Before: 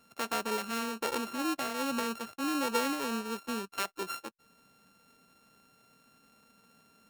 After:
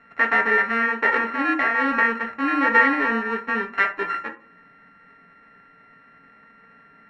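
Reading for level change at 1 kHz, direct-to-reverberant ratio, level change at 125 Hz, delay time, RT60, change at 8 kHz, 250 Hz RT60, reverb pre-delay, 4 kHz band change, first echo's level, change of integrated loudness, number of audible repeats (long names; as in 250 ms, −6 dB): +12.5 dB, 2.0 dB, can't be measured, no echo audible, 0.40 s, below −15 dB, 0.50 s, 5 ms, −1.5 dB, no echo audible, +13.5 dB, no echo audible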